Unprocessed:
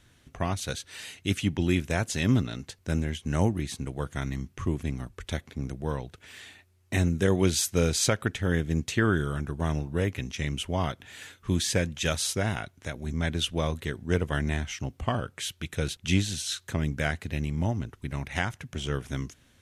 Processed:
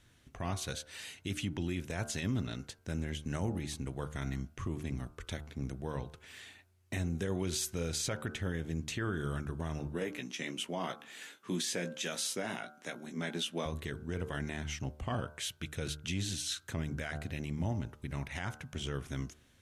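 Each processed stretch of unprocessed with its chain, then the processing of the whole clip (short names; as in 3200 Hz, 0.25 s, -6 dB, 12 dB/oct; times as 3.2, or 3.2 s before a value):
9.87–13.66 HPF 190 Hz 24 dB/oct + doubler 17 ms -7.5 dB
whole clip: de-hum 75.05 Hz, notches 21; limiter -21 dBFS; gain -4.5 dB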